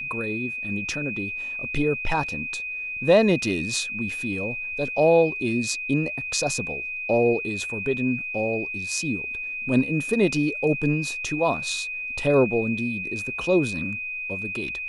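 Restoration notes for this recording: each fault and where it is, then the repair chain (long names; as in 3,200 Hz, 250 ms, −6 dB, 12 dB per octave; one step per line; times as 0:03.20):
whistle 2,500 Hz −29 dBFS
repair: notch filter 2,500 Hz, Q 30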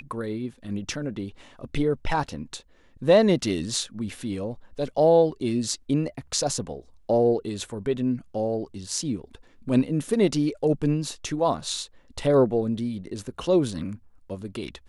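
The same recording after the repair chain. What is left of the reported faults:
none of them is left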